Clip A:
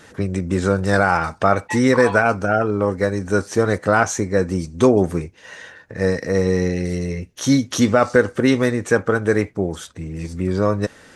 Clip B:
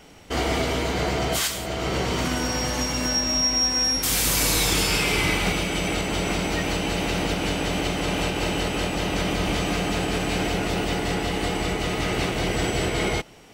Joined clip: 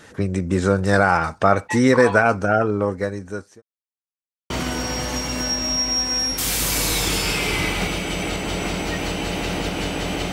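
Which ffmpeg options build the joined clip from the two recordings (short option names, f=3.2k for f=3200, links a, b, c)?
-filter_complex "[0:a]apad=whole_dur=10.32,atrim=end=10.32,asplit=2[a][b];[a]atrim=end=3.62,asetpts=PTS-STARTPTS,afade=t=out:st=2.63:d=0.99[c];[b]atrim=start=3.62:end=4.5,asetpts=PTS-STARTPTS,volume=0[d];[1:a]atrim=start=2.15:end=7.97,asetpts=PTS-STARTPTS,afade=t=in:d=0.004:c=hsin[e];[c][d][e]concat=n=3:v=0:a=1"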